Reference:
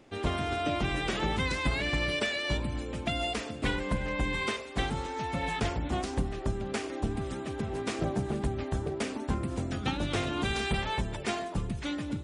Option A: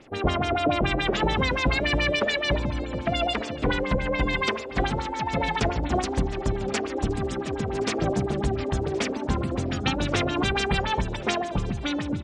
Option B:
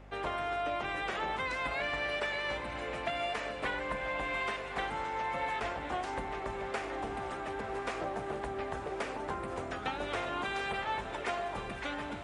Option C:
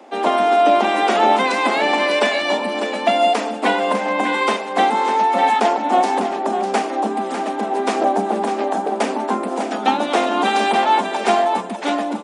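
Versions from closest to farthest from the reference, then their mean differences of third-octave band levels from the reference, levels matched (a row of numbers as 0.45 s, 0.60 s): A, B, C; 3.5 dB, 5.0 dB, 8.0 dB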